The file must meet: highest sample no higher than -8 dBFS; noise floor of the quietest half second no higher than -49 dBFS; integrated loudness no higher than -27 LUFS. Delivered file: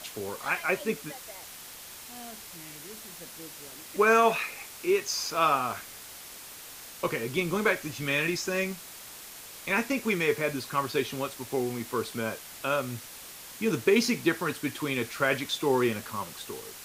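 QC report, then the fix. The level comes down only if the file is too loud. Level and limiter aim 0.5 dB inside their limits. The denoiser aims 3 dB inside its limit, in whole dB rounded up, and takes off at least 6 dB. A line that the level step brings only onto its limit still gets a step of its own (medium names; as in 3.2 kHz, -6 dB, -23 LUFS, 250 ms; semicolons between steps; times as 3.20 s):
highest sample -11.0 dBFS: pass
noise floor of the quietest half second -45 dBFS: fail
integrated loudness -28.5 LUFS: pass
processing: noise reduction 7 dB, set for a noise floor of -45 dBFS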